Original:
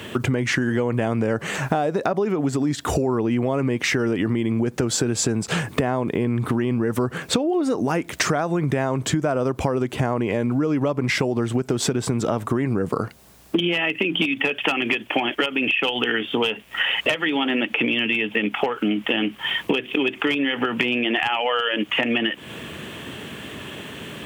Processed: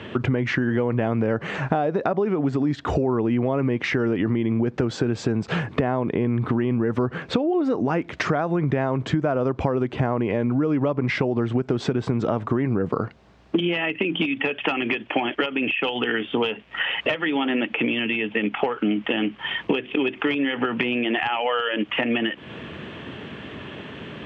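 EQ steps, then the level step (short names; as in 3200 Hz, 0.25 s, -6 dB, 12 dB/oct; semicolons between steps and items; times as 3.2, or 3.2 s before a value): air absorption 160 m; high shelf 6600 Hz -11 dB; 0.0 dB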